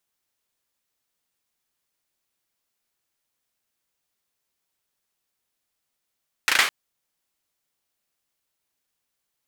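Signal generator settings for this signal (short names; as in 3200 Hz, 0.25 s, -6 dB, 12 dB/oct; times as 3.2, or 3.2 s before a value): hand clap length 0.21 s, apart 36 ms, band 1800 Hz, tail 0.42 s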